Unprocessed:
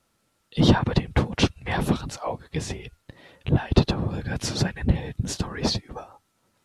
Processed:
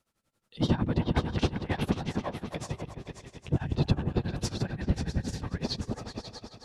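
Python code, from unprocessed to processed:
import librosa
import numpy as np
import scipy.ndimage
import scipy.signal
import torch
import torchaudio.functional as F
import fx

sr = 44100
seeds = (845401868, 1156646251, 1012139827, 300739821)

y = fx.echo_opening(x, sr, ms=132, hz=200, octaves=2, feedback_pct=70, wet_db=0)
y = y * (1.0 - 0.87 / 2.0 + 0.87 / 2.0 * np.cos(2.0 * np.pi * 11.0 * (np.arange(len(y)) / sr)))
y = y * librosa.db_to_amplitude(-5.5)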